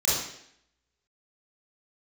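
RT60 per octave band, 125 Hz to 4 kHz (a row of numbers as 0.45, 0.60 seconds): 0.60, 0.75, 0.70, 0.70, 0.75, 0.70 seconds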